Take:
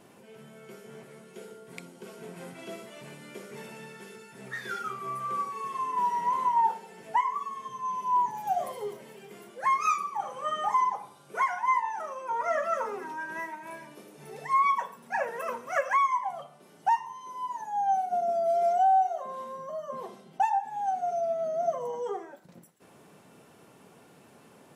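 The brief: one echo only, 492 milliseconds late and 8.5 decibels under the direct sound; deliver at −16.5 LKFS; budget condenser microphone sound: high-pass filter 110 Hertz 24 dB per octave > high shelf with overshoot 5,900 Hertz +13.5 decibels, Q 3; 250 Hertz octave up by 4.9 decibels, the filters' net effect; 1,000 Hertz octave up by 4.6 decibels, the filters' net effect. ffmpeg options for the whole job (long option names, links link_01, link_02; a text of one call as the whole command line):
ffmpeg -i in.wav -af "highpass=frequency=110:width=0.5412,highpass=frequency=110:width=1.3066,equalizer=frequency=250:width_type=o:gain=6.5,equalizer=frequency=1000:width_type=o:gain=5.5,highshelf=frequency=5900:width_type=q:width=3:gain=13.5,aecho=1:1:492:0.376,volume=8dB" out.wav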